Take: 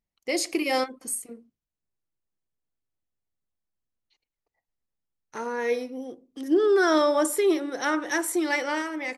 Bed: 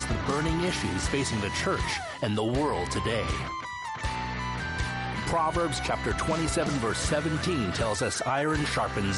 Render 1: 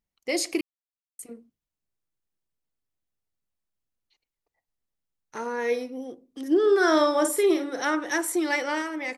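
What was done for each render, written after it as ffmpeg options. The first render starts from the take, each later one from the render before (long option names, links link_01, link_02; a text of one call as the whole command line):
ffmpeg -i in.wav -filter_complex "[0:a]asettb=1/sr,asplit=3[link_01][link_02][link_03];[link_01]atrim=end=6.614[link_04];[link_02]atrim=start=6.61:end=7.84,asetpts=PTS-STARTPTS,afade=type=in:duration=0.004:curve=qsin,afade=type=out:start_time=1.226:duration=0.004:curve=qsin,asplit=2[link_05][link_06];[link_06]adelay=47,volume=-8dB[link_07];[link_05][link_07]amix=inputs=2:normalize=0,atrim=end_sample=54243[link_08];[link_03]atrim=start=7.836[link_09];[link_04][link_08]acrossfade=duration=0.004:curve1=hsin:curve2=qsin[link_10];[link_10][link_09]acrossfade=duration=0.004:curve1=qsin:curve2=hsin,asplit=3[link_11][link_12][link_13];[link_11]atrim=end=0.61,asetpts=PTS-STARTPTS,afade=type=out:start_time=0.606:duration=0.004:curve=hsin[link_14];[link_12]atrim=start=0.61:end=1.19,asetpts=PTS-STARTPTS,volume=0[link_15];[link_13]atrim=start=1.19,asetpts=PTS-STARTPTS,afade=type=in:duration=0.004:curve=hsin[link_16];[link_14][link_15][link_16]concat=n=3:v=0:a=1" out.wav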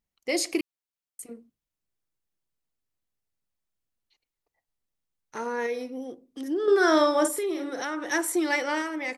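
ffmpeg -i in.wav -filter_complex "[0:a]asettb=1/sr,asplit=3[link_01][link_02][link_03];[link_01]atrim=end=5.664[link_04];[link_02]atrim=start=5.66:end=6.68,asetpts=PTS-STARTPTS,afade=type=in:duration=0.004:curve=qsin,afade=type=out:start_time=1.016:duration=0.004:curve=qsin,acompressor=threshold=-30dB:ratio=2:attack=3.2:release=140:knee=1:detection=peak[link_05];[link_03]atrim=start=6.676[link_06];[link_04][link_05]acrossfade=duration=0.004:curve1=hsin:curve2=qsin[link_07];[link_07][link_06]acrossfade=duration=0.004:curve1=qsin:curve2=hsin,asettb=1/sr,asplit=3[link_08][link_09][link_10];[link_08]atrim=end=7.274[link_11];[link_09]atrim=start=7.27:end=8.03,asetpts=PTS-STARTPTS,afade=type=in:duration=0.004:curve=qsin,afade=type=out:start_time=0.756:duration=0.004:curve=qsin,acompressor=threshold=-28dB:ratio=3:attack=3.2:release=140:knee=1:detection=peak[link_12];[link_10]atrim=start=8.026[link_13];[link_11][link_12]acrossfade=duration=0.004:curve1=hsin:curve2=qsin[link_14];[link_14][link_13]acrossfade=duration=0.004:curve1=qsin:curve2=hsin" out.wav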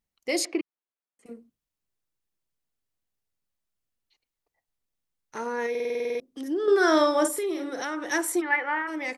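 ffmpeg -i in.wav -filter_complex "[0:a]asettb=1/sr,asplit=3[link_01][link_02][link_03];[link_01]atrim=end=0.454[link_04];[link_02]atrim=start=0.45:end=1.26,asetpts=PTS-STARTPTS,afade=type=in:duration=0.004:curve=qsin,afade=type=out:start_time=0.806:duration=0.004:curve=qsin,highpass=220,lowpass=2100[link_05];[link_03]atrim=start=1.256[link_06];[link_04][link_05]acrossfade=duration=0.004:curve1=hsin:curve2=qsin[link_07];[link_07][link_06]acrossfade=duration=0.004:curve1=qsin:curve2=hsin,asplit=3[link_08][link_09][link_10];[link_08]afade=type=out:start_time=8.4:duration=0.02[link_11];[link_09]highpass=430,equalizer=frequency=600:width_type=q:width=4:gain=-8,equalizer=frequency=890:width_type=q:width=4:gain=4,equalizer=frequency=1800:width_type=q:width=4:gain=5,lowpass=frequency=2400:width=0.5412,lowpass=frequency=2400:width=1.3066,afade=type=in:start_time=8.4:duration=0.02,afade=type=out:start_time=8.87:duration=0.02[link_12];[link_10]afade=type=in:start_time=8.87:duration=0.02[link_13];[link_11][link_12][link_13]amix=inputs=3:normalize=0,asplit=11[link_14][link_15][link_16][link_17][link_18][link_19][link_20][link_21][link_22][link_23][link_24];[link_14]atrim=end=5.752[link_25];[link_15]atrim=start=5.698:end=5.752[link_26];[link_16]atrim=start=5.698:end=5.752[link_27];[link_17]atrim=start=5.698:end=5.752[link_28];[link_18]atrim=start=5.698:end=5.752[link_29];[link_19]atrim=start=5.698:end=5.752[link_30];[link_20]atrim=start=5.698:end=5.752[link_31];[link_21]atrim=start=5.698:end=5.752[link_32];[link_22]atrim=start=5.698:end=5.752[link_33];[link_23]atrim=start=5.698:end=5.752[link_34];[link_24]atrim=start=6.198[link_35];[link_25][link_26]acrossfade=duration=0.004:curve1=hsin:curve2=hsin[link_36];[link_36][link_27]acrossfade=duration=0.004:curve1=hsin:curve2=hsin[link_37];[link_37][link_28]acrossfade=duration=0.004:curve1=hsin:curve2=hsin[link_38];[link_38][link_29]acrossfade=duration=0.004:curve1=hsin:curve2=hsin[link_39];[link_39][link_30]acrossfade=duration=0.004:curve1=hsin:curve2=hsin[link_40];[link_40][link_31]acrossfade=duration=0.004:curve1=hsin:curve2=hsin[link_41];[link_41][link_32]acrossfade=duration=0.004:curve1=hsin:curve2=hsin[link_42];[link_42][link_33]acrossfade=duration=0.004:curve1=hsin:curve2=hsin[link_43];[link_43][link_34]acrossfade=duration=0.004:curve1=hsin:curve2=hsin[link_44];[link_44][link_35]acrossfade=duration=0.004:curve1=hsin:curve2=hsin" out.wav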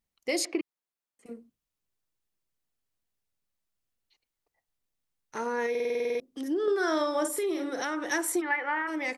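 ffmpeg -i in.wav -af "acompressor=threshold=-24dB:ratio=6" out.wav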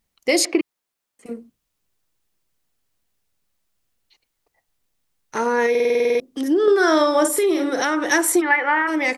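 ffmpeg -i in.wav -af "volume=11dB" out.wav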